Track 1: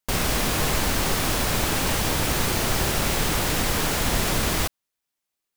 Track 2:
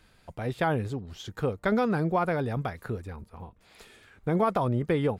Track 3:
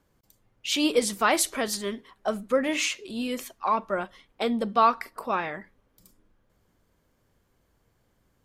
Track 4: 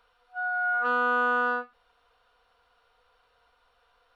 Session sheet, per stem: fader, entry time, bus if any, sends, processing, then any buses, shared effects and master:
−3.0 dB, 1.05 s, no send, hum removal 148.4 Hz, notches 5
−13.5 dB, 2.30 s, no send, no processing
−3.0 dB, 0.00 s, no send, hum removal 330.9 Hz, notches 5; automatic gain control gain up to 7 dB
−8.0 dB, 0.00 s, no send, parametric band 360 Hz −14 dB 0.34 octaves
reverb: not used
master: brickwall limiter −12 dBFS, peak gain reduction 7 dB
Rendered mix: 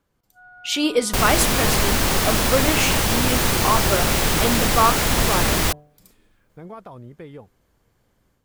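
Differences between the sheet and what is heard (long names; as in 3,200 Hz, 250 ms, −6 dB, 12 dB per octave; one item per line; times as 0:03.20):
stem 1 −3.0 dB → +4.0 dB
stem 4 −8.0 dB → −17.5 dB
master: missing brickwall limiter −12 dBFS, peak gain reduction 7 dB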